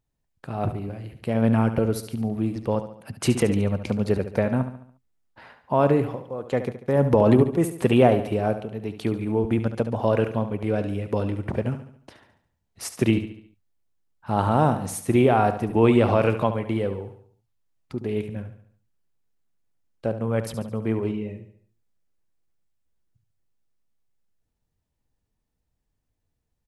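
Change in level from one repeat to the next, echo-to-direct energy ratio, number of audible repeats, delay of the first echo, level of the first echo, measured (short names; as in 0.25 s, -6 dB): -6.5 dB, -10.0 dB, 4, 71 ms, -11.0 dB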